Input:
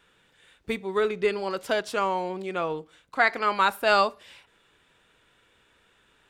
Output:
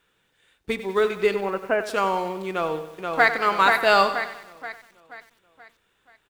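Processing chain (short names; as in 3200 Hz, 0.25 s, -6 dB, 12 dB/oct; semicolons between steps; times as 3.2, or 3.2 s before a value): G.711 law mismatch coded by A; 1.34–1.83 steep low-pass 2700 Hz 96 dB/oct; reverb, pre-delay 3 ms, DRR 18.5 dB; 2.5–3.31 echo throw 0.48 s, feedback 45%, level -3.5 dB; lo-fi delay 95 ms, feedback 55%, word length 8-bit, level -12 dB; gain +3.5 dB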